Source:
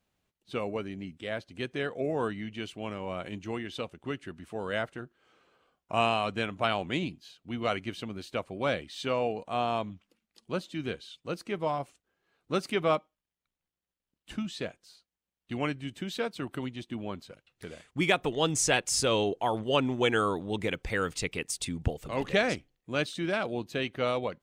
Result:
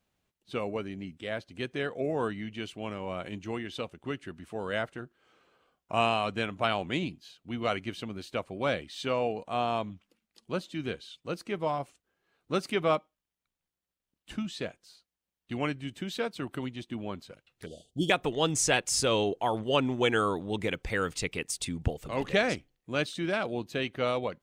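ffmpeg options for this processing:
-filter_complex "[0:a]asettb=1/sr,asplit=3[s0][s1][s2];[s0]atrim=end=17.664[s3];[s1]atrim=start=17.66:end=18.1,asetpts=PTS-STARTPTS,afade=t=in:d=0.004:c=qsin,afade=t=out:st=0.436:d=0.004:c=qsin,asuperstop=centerf=1500:order=20:qfactor=0.67[s4];[s2]atrim=start=18.096[s5];[s3][s4]acrossfade=d=0.004:c1=hsin:c2=qsin[s6];[s6][s5]acrossfade=d=0.004:c1=qsin:c2=hsin"

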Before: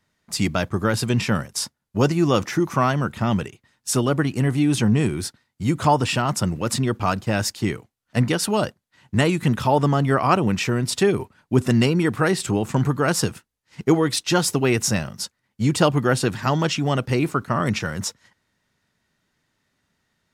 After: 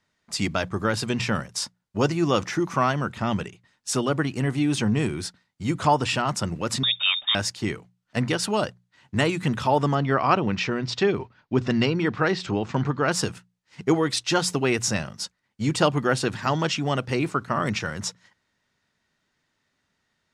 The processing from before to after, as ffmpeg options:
-filter_complex "[0:a]asettb=1/sr,asplit=3[s0][s1][s2];[s0]atrim=end=6.834[s3];[s1]atrim=start=6.83:end=7.35,asetpts=PTS-STARTPTS,afade=t=in:d=0.004:c=qsin,afade=t=out:st=0.516:d=0.004:c=qsin,lowpass=f=3200:t=q:w=0.5098,lowpass=f=3200:t=q:w=0.6013,lowpass=f=3200:t=q:w=0.9,lowpass=f=3200:t=q:w=2.563,afreqshift=-3800[s4];[s2]atrim=start=7.346[s5];[s3][s4]acrossfade=d=0.004:c1=hsin:c2=qsin[s6];[s6][s5]acrossfade=d=0.004:c1=qsin:c2=hsin,asettb=1/sr,asplit=3[s7][s8][s9];[s7]atrim=end=9.954[s10];[s8]atrim=start=9.95:end=13.12,asetpts=PTS-STARTPTS,afade=t=in:d=0.004:c=qsin,afade=t=out:st=3.166:d=0.004:c=qsin,lowpass=f=5500:w=0.5412,lowpass=f=5500:w=1.3066[s11];[s9]atrim=start=13.116[s12];[s10][s11]acrossfade=d=0.004:c1=hsin:c2=qsin[s13];[s13][s12]acrossfade=d=0.004:c1=qsin:c2=hsin,lowpass=7900,lowshelf=f=420:g=-4,bandreject=f=60:t=h:w=6,bandreject=f=120:t=h:w=6,bandreject=f=180:t=h:w=6,volume=0.891"

